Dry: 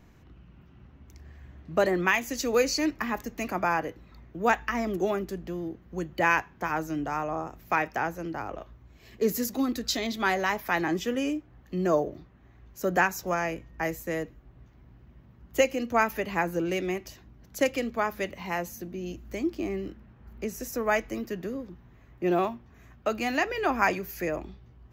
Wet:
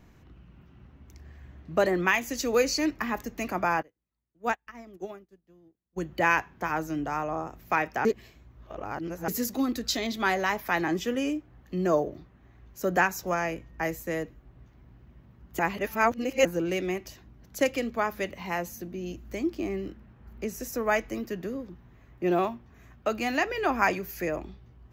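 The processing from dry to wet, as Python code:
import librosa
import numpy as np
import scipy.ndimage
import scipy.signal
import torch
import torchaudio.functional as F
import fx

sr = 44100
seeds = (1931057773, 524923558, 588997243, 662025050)

y = fx.upward_expand(x, sr, threshold_db=-42.0, expansion=2.5, at=(3.81, 5.96), fade=0.02)
y = fx.edit(y, sr, fx.reverse_span(start_s=8.05, length_s=1.23),
    fx.reverse_span(start_s=15.59, length_s=0.86), tone=tone)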